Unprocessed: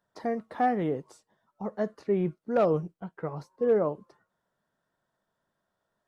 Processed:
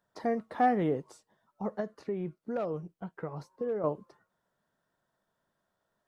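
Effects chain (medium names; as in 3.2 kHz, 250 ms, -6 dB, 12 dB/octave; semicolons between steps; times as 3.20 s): 1.80–3.84 s: compression 2.5:1, threshold -35 dBFS, peak gain reduction 10.5 dB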